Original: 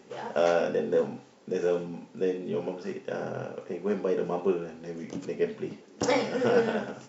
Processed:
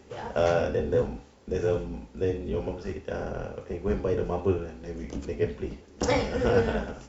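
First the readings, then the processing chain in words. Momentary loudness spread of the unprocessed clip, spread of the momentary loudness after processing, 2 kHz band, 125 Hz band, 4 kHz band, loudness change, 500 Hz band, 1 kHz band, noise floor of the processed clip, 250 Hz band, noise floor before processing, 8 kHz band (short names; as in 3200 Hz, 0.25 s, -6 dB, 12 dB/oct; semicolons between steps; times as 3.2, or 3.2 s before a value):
13 LU, 12 LU, 0.0 dB, +8.5 dB, 0.0 dB, +0.5 dB, 0.0 dB, 0.0 dB, -52 dBFS, +0.5 dB, -54 dBFS, n/a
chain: octaver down 2 oct, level 0 dB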